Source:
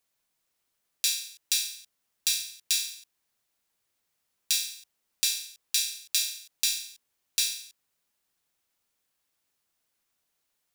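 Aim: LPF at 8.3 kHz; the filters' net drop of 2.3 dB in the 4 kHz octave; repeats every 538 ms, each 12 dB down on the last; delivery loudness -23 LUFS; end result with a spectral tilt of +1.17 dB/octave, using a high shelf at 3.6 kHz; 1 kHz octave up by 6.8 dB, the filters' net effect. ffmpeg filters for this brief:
-af "lowpass=8300,equalizer=f=1000:t=o:g=8.5,highshelf=f=3600:g=3,equalizer=f=4000:t=o:g=-5,aecho=1:1:538|1076|1614:0.251|0.0628|0.0157,volume=2.51"

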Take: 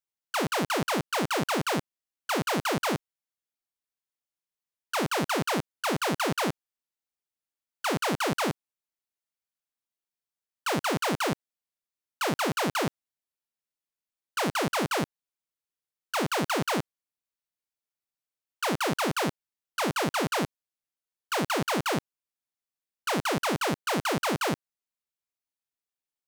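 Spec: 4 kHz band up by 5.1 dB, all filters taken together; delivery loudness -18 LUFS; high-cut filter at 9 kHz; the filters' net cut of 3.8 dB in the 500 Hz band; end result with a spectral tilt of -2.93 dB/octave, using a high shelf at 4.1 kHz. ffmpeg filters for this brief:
-af "lowpass=9000,equalizer=f=500:t=o:g=-5,equalizer=f=4000:t=o:g=4.5,highshelf=f=4100:g=4,volume=3.16"

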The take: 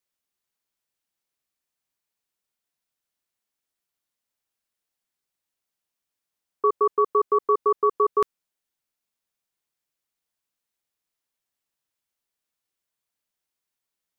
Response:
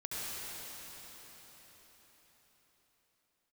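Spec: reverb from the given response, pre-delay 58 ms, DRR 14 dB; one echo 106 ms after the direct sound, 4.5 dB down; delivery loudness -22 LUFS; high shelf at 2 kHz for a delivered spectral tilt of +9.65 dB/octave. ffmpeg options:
-filter_complex "[0:a]highshelf=f=2000:g=-7.5,aecho=1:1:106:0.596,asplit=2[s0][s1];[1:a]atrim=start_sample=2205,adelay=58[s2];[s1][s2]afir=irnorm=-1:irlink=0,volume=0.126[s3];[s0][s3]amix=inputs=2:normalize=0,volume=1.26"

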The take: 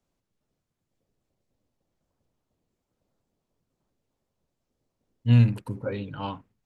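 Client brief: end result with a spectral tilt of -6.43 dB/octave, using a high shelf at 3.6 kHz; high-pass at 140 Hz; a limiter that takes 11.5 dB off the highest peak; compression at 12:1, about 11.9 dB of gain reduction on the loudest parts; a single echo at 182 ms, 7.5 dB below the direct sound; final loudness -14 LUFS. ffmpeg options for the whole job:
-af "highpass=140,highshelf=f=3600:g=-3,acompressor=threshold=0.0398:ratio=12,alimiter=level_in=2.82:limit=0.0631:level=0:latency=1,volume=0.355,aecho=1:1:182:0.422,volume=25.1"

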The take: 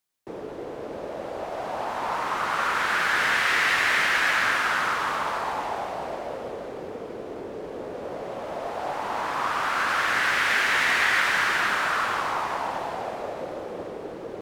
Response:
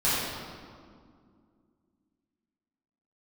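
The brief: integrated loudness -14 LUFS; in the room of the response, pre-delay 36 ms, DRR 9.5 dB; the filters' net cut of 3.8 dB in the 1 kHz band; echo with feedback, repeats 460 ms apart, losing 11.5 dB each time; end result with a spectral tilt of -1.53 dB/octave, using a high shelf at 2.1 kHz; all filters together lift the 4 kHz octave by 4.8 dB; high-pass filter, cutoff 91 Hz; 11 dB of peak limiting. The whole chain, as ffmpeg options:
-filter_complex "[0:a]highpass=91,equalizer=f=1000:t=o:g=-6.5,highshelf=f=2100:g=4,equalizer=f=4000:t=o:g=3,alimiter=limit=0.119:level=0:latency=1,aecho=1:1:460|920|1380:0.266|0.0718|0.0194,asplit=2[s0][s1];[1:a]atrim=start_sample=2205,adelay=36[s2];[s1][s2]afir=irnorm=-1:irlink=0,volume=0.0668[s3];[s0][s3]amix=inputs=2:normalize=0,volume=5.01"

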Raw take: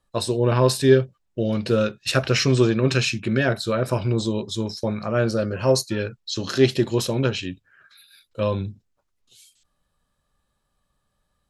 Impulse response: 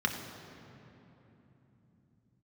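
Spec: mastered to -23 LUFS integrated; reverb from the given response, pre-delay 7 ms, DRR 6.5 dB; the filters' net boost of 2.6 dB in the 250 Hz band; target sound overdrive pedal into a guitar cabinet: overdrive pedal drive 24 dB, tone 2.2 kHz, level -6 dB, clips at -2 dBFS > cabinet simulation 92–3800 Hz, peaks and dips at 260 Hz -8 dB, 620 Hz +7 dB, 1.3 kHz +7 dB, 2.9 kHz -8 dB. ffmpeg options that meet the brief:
-filter_complex "[0:a]equalizer=f=250:t=o:g=8,asplit=2[s0][s1];[1:a]atrim=start_sample=2205,adelay=7[s2];[s1][s2]afir=irnorm=-1:irlink=0,volume=0.178[s3];[s0][s3]amix=inputs=2:normalize=0,asplit=2[s4][s5];[s5]highpass=f=720:p=1,volume=15.8,asoftclip=type=tanh:threshold=0.794[s6];[s4][s6]amix=inputs=2:normalize=0,lowpass=f=2200:p=1,volume=0.501,highpass=92,equalizer=f=260:t=q:w=4:g=-8,equalizer=f=620:t=q:w=4:g=7,equalizer=f=1300:t=q:w=4:g=7,equalizer=f=2900:t=q:w=4:g=-8,lowpass=f=3800:w=0.5412,lowpass=f=3800:w=1.3066,volume=0.299"

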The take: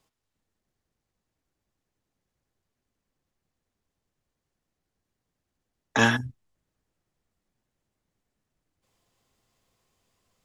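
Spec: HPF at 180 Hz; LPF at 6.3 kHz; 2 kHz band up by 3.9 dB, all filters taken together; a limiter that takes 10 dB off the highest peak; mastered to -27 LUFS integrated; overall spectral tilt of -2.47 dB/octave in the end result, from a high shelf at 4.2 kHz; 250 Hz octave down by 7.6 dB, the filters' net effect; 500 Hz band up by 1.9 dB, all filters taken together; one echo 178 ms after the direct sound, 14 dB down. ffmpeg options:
-af "highpass=180,lowpass=6300,equalizer=f=250:t=o:g=-8,equalizer=f=500:t=o:g=4,equalizer=f=2000:t=o:g=3.5,highshelf=f=4200:g=8,alimiter=limit=0.2:level=0:latency=1,aecho=1:1:178:0.2,volume=1.06"

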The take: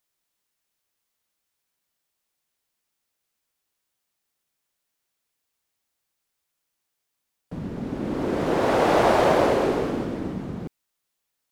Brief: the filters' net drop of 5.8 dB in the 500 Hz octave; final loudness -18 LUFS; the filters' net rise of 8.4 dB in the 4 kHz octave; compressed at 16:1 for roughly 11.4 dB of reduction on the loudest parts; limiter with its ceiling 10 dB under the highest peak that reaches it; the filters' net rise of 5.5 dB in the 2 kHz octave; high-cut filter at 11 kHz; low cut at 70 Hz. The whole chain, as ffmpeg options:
-af "highpass=70,lowpass=11000,equalizer=f=500:t=o:g=-8,equalizer=f=2000:t=o:g=5.5,equalizer=f=4000:t=o:g=9,acompressor=threshold=0.0398:ratio=16,volume=10,alimiter=limit=0.335:level=0:latency=1"

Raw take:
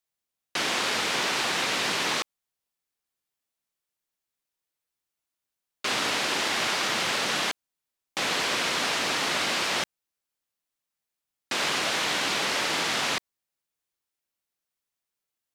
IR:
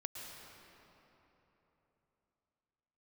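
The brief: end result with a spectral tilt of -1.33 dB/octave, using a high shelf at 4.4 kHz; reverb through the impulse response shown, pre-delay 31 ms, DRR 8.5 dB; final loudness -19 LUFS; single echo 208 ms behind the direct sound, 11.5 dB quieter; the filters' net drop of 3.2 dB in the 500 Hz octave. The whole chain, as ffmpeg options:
-filter_complex "[0:a]equalizer=f=500:t=o:g=-4,highshelf=f=4400:g=-6.5,aecho=1:1:208:0.266,asplit=2[s0][s1];[1:a]atrim=start_sample=2205,adelay=31[s2];[s1][s2]afir=irnorm=-1:irlink=0,volume=0.447[s3];[s0][s3]amix=inputs=2:normalize=0,volume=2.66"

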